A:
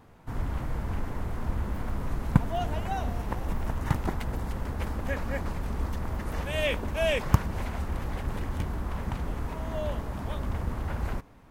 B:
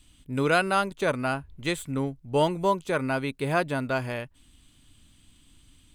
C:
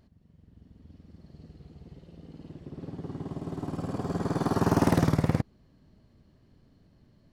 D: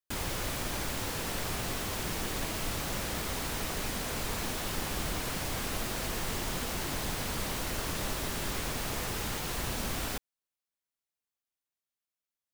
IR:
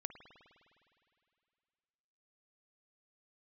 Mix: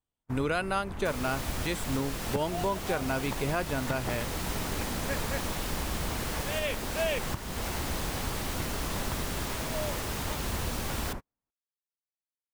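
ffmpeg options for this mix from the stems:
-filter_complex "[0:a]lowshelf=frequency=140:gain=-6,volume=-1.5dB[link_01];[1:a]volume=0dB[link_02];[2:a]volume=-18.5dB[link_03];[3:a]adelay=950,volume=-0.5dB[link_04];[link_01][link_02][link_03][link_04]amix=inputs=4:normalize=0,agate=range=-36dB:threshold=-35dB:ratio=16:detection=peak,alimiter=limit=-19dB:level=0:latency=1:release=327"

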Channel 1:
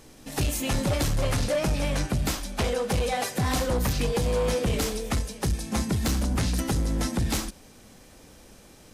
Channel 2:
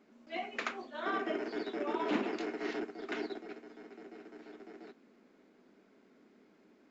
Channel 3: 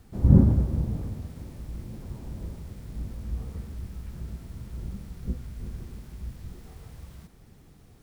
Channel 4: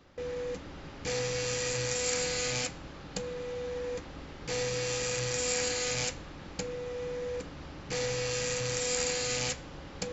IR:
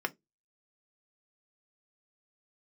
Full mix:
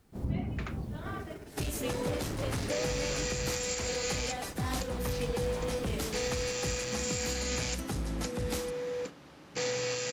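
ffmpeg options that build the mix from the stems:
-filter_complex "[0:a]highpass=frequency=49:width=0.5412,highpass=frequency=49:width=1.3066,adelay=1200,volume=-8dB[link_01];[1:a]volume=-6.5dB[link_02];[2:a]lowshelf=frequency=130:gain=-9,acompressor=threshold=-37dB:ratio=2,volume=0dB[link_03];[3:a]highpass=150,adelay=1650,volume=0.5dB[link_04];[link_01][link_02][link_03][link_04]amix=inputs=4:normalize=0,agate=range=-7dB:threshold=-39dB:ratio=16:detection=peak,alimiter=limit=-22dB:level=0:latency=1:release=243"

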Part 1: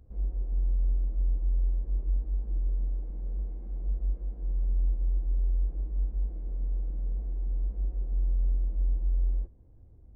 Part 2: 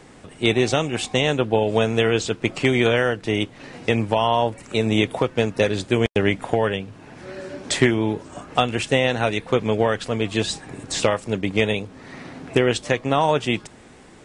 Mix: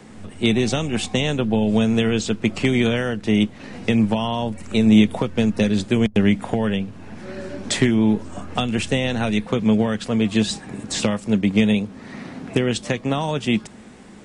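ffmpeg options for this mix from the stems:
ffmpeg -i stem1.wav -i stem2.wav -filter_complex "[0:a]equalizer=frequency=150:width_type=o:width=2.2:gain=7.5,aeval=exprs='abs(val(0))':channel_layout=same,volume=-12dB[link_01];[1:a]acrossover=split=280|3000[link_02][link_03][link_04];[link_03]acompressor=threshold=-23dB:ratio=6[link_05];[link_02][link_05][link_04]amix=inputs=3:normalize=0,volume=0.5dB[link_06];[link_01][link_06]amix=inputs=2:normalize=0,equalizer=frequency=210:width_type=o:width=0.32:gain=12.5" out.wav

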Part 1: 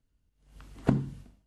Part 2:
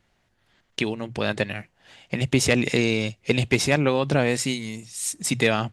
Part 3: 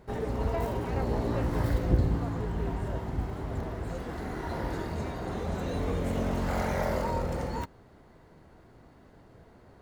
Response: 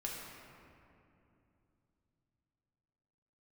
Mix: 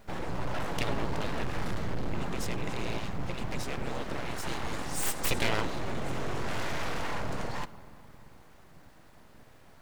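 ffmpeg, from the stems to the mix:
-filter_complex "[0:a]volume=-9.5dB[link_01];[1:a]alimiter=limit=-12.5dB:level=0:latency=1:release=333,volume=8dB,afade=type=out:start_time=0.99:duration=0.3:silence=0.375837,afade=type=in:start_time=4.63:duration=0.2:silence=0.298538,asplit=2[link_02][link_03];[link_03]volume=-22dB[link_04];[2:a]lowpass=8500,equalizer=frequency=340:width=0.97:gain=-9,asoftclip=type=hard:threshold=-28.5dB,volume=2.5dB,asplit=2[link_05][link_06];[link_06]volume=-14.5dB[link_07];[3:a]atrim=start_sample=2205[link_08];[link_07][link_08]afir=irnorm=-1:irlink=0[link_09];[link_04]aecho=0:1:96:1[link_10];[link_01][link_02][link_05][link_09][link_10]amix=inputs=5:normalize=0,aeval=exprs='abs(val(0))':channel_layout=same,acrusher=bits=10:mix=0:aa=0.000001"

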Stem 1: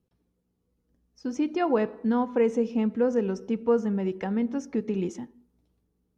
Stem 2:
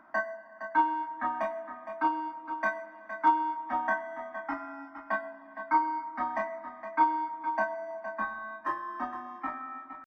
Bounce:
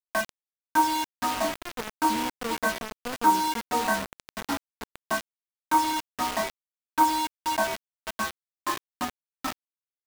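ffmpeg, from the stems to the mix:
ffmpeg -i stem1.wav -i stem2.wav -filter_complex "[0:a]bass=frequency=250:gain=3,treble=frequency=4000:gain=-7,adelay=50,volume=-12.5dB[link_01];[1:a]agate=range=-11dB:threshold=-36dB:ratio=16:detection=peak,equalizer=frequency=190:width=0.34:gain=6.5,volume=1dB[link_02];[link_01][link_02]amix=inputs=2:normalize=0,acrusher=bits=4:mix=0:aa=0.000001" out.wav

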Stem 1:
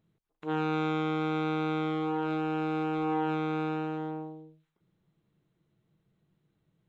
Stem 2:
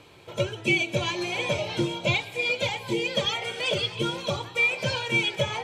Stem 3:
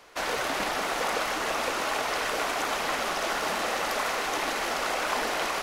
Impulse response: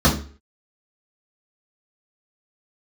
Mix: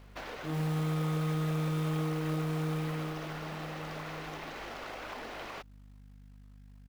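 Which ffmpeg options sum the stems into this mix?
-filter_complex "[0:a]acompressor=threshold=-34dB:ratio=2.5,volume=-5dB,afade=type=out:start_time=2.67:duration=0.67:silence=0.251189,asplit=3[link_01][link_02][link_03];[link_02]volume=-21.5dB[link_04];[link_03]volume=-18dB[link_05];[2:a]lowpass=3100,lowshelf=frequency=430:gain=10.5,volume=-12dB[link_06];[link_01][link_06]amix=inputs=2:normalize=0,aeval=exprs='val(0)+0.00251*(sin(2*PI*50*n/s)+sin(2*PI*2*50*n/s)/2+sin(2*PI*3*50*n/s)/3+sin(2*PI*4*50*n/s)/4+sin(2*PI*5*50*n/s)/5)':channel_layout=same,acompressor=threshold=-41dB:ratio=4,volume=0dB[link_07];[3:a]atrim=start_sample=2205[link_08];[link_04][link_08]afir=irnorm=-1:irlink=0[link_09];[link_05]aecho=0:1:765|1530|2295|3060|3825:1|0.34|0.116|0.0393|0.0134[link_10];[link_07][link_09][link_10]amix=inputs=3:normalize=0,highshelf=frequency=3100:gain=11.5,acrusher=bits=5:mode=log:mix=0:aa=0.000001"

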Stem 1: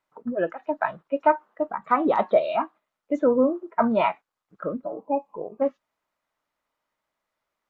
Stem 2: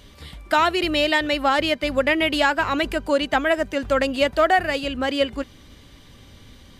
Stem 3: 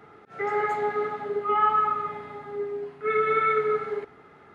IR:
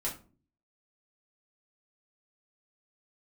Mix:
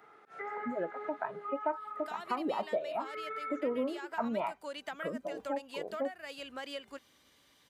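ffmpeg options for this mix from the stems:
-filter_complex "[0:a]highpass=120,adelay=400,volume=-1.5dB[link_01];[1:a]adelay=1550,volume=-8.5dB[link_02];[2:a]acrossover=split=2900[link_03][link_04];[link_04]acompressor=threshold=-57dB:ratio=4:attack=1:release=60[link_05];[link_03][link_05]amix=inputs=2:normalize=0,volume=-1dB[link_06];[link_02][link_06]amix=inputs=2:normalize=0,highpass=frequency=1200:poles=1,acompressor=threshold=-31dB:ratio=6,volume=0dB[link_07];[link_01][link_07]amix=inputs=2:normalize=0,equalizer=frequency=3300:width_type=o:width=2.2:gain=-5,acompressor=threshold=-39dB:ratio=2"

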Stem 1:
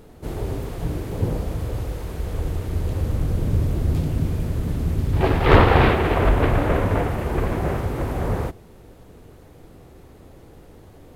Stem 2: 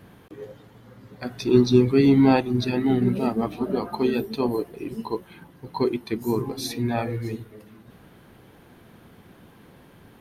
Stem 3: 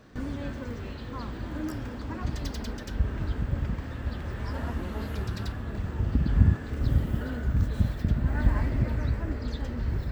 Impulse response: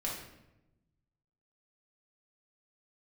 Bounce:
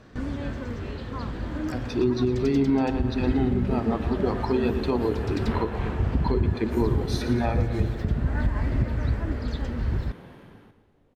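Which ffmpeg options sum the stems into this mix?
-filter_complex "[0:a]flanger=delay=17:depth=6.4:speed=0.43,volume=-15.5dB[link_01];[1:a]dynaudnorm=framelen=700:gausssize=3:maxgain=10dB,adelay=500,volume=-5dB,asplit=2[link_02][link_03];[link_03]volume=-12dB[link_04];[2:a]highshelf=frequency=4400:gain=7.5,volume=2.5dB[link_05];[link_04]aecho=0:1:115|230|345|460|575|690|805|920|1035:1|0.59|0.348|0.205|0.121|0.0715|0.0422|0.0249|0.0147[link_06];[link_01][link_02][link_05][link_06]amix=inputs=4:normalize=0,aemphasis=mode=reproduction:type=50fm,alimiter=limit=-13.5dB:level=0:latency=1:release=253"

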